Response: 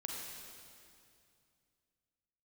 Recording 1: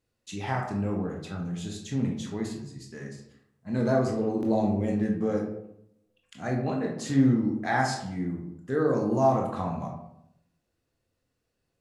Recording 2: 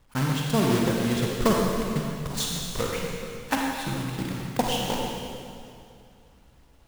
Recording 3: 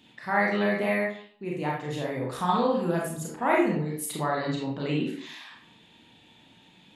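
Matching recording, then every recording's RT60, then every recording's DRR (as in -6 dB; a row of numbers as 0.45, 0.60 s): 2; 0.80, 2.4, 0.60 s; 0.0, -1.5, -3.0 dB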